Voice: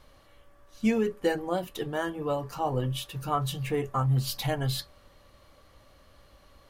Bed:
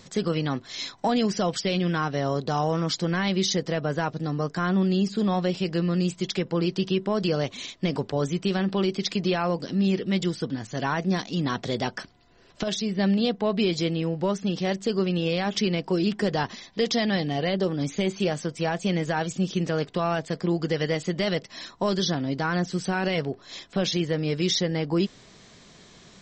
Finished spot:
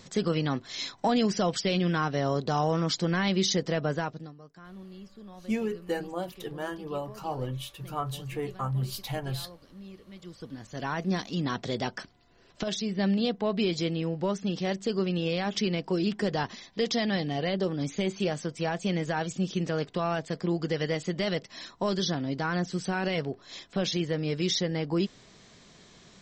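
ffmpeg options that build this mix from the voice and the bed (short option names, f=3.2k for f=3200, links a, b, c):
-filter_complex "[0:a]adelay=4650,volume=-4.5dB[a];[1:a]volume=18dB,afade=t=out:st=3.88:d=0.46:silence=0.0841395,afade=t=in:st=10.2:d=0.93:silence=0.105925[b];[a][b]amix=inputs=2:normalize=0"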